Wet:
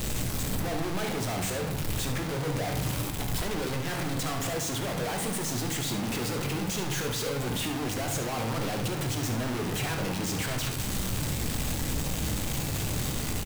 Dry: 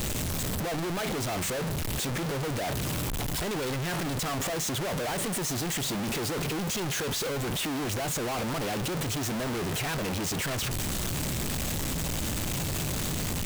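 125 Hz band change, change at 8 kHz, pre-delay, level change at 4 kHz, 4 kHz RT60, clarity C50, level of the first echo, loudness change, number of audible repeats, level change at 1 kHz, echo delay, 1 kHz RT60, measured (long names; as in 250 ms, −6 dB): +1.0 dB, −1.5 dB, 9 ms, −1.0 dB, 0.55 s, 6.0 dB, −10.5 dB, −0.5 dB, 1, −0.5 dB, 71 ms, 0.75 s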